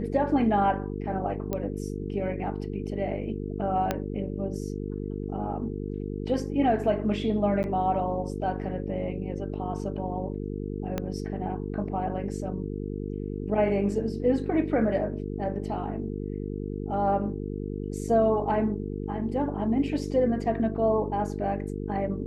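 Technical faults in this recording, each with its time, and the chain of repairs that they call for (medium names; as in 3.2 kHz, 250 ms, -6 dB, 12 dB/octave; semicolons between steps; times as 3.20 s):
buzz 50 Hz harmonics 9 -33 dBFS
1.53 s: pop -16 dBFS
3.91 s: pop -12 dBFS
7.63–7.64 s: dropout 9.9 ms
10.98 s: pop -15 dBFS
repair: de-click; de-hum 50 Hz, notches 9; interpolate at 7.63 s, 9.9 ms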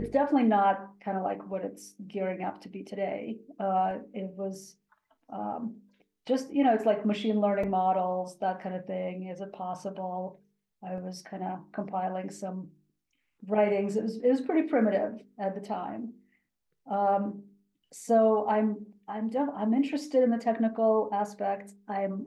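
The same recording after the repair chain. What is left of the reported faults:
3.91 s: pop
10.98 s: pop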